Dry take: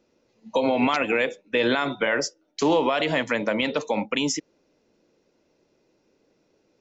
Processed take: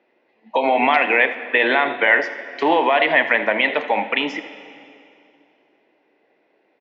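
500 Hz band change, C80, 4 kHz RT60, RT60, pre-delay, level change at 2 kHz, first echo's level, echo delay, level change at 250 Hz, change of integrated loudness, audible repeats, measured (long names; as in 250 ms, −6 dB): +3.5 dB, 11.5 dB, 2.3 s, 2.6 s, 9 ms, +10.5 dB, −15.0 dB, 81 ms, −1.0 dB, +6.5 dB, 1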